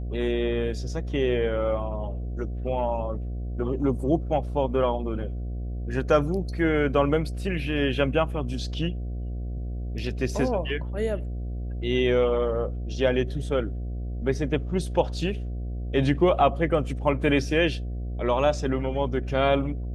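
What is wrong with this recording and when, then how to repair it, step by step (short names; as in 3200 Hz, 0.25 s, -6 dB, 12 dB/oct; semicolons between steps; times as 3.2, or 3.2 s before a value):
buzz 60 Hz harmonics 12 -31 dBFS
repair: de-hum 60 Hz, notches 12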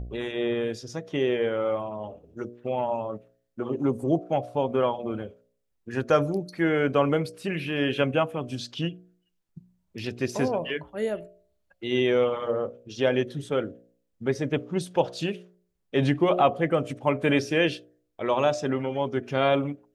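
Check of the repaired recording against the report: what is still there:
none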